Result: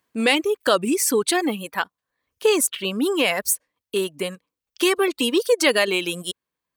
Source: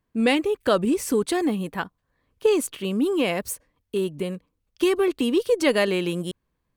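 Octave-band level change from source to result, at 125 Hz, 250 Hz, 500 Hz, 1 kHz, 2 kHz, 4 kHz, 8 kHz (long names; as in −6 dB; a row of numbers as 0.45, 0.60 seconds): −5.5, −1.0, +1.0, +3.5, +6.0, +7.5, +10.0 decibels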